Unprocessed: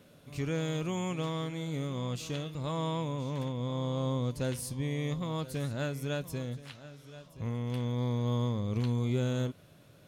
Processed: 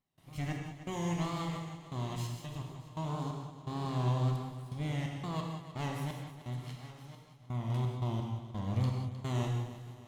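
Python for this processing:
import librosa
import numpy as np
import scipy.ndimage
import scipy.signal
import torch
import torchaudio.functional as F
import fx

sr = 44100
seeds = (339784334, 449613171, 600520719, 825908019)

y = fx.lower_of_two(x, sr, delay_ms=1.0)
y = fx.step_gate(y, sr, bpm=86, pattern='.xx..xxxx..xx.x.', floor_db=-24.0, edge_ms=4.5)
y = fx.wow_flutter(y, sr, seeds[0], rate_hz=2.1, depth_cents=100.0)
y = fx.echo_feedback(y, sr, ms=309, feedback_pct=47, wet_db=-13.5)
y = fx.rev_gated(y, sr, seeds[1], gate_ms=220, shape='flat', drr_db=1.0)
y = y * librosa.db_to_amplitude(-4.0)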